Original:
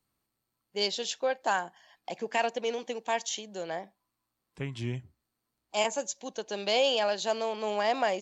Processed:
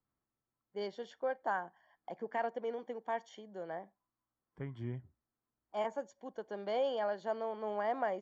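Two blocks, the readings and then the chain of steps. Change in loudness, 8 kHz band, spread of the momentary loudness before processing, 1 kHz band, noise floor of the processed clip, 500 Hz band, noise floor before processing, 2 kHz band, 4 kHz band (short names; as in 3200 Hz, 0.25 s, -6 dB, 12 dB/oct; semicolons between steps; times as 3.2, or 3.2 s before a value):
-8.0 dB, n/a, 13 LU, -6.5 dB, under -85 dBFS, -6.5 dB, -84 dBFS, -10.5 dB, -21.0 dB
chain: polynomial smoothing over 41 samples; gain -6.5 dB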